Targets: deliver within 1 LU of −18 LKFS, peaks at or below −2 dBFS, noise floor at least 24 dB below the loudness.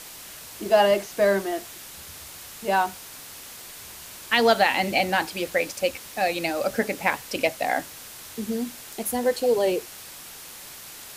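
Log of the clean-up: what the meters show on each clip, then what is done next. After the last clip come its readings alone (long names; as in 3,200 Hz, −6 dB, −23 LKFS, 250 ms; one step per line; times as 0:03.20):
background noise floor −42 dBFS; target noise floor −48 dBFS; integrated loudness −24.0 LKFS; sample peak −5.5 dBFS; target loudness −18.0 LKFS
→ broadband denoise 6 dB, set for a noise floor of −42 dBFS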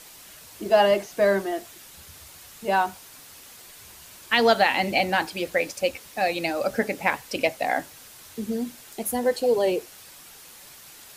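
background noise floor −47 dBFS; target noise floor −49 dBFS
→ broadband denoise 6 dB, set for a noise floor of −47 dBFS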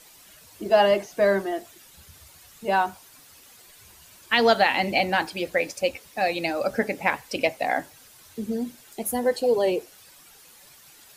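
background noise floor −52 dBFS; integrated loudness −24.0 LKFS; sample peak −5.5 dBFS; target loudness −18.0 LKFS
→ level +6 dB
brickwall limiter −2 dBFS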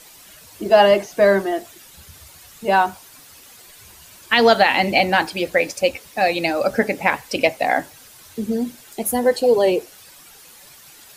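integrated loudness −18.5 LKFS; sample peak −2.0 dBFS; background noise floor −46 dBFS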